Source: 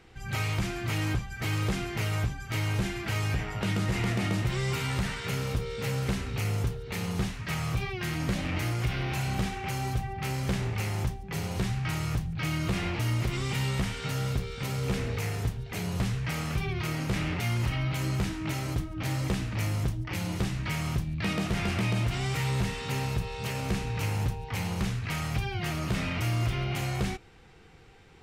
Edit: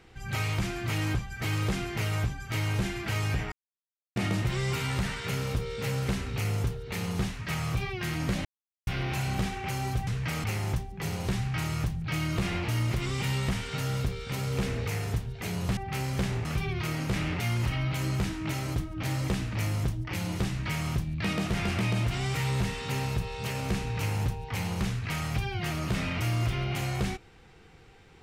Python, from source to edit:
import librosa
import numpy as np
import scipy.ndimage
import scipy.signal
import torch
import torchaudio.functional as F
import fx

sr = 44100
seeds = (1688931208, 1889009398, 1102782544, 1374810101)

y = fx.edit(x, sr, fx.silence(start_s=3.52, length_s=0.64),
    fx.silence(start_s=8.45, length_s=0.42),
    fx.swap(start_s=10.07, length_s=0.68, other_s=16.08, other_length_s=0.37), tone=tone)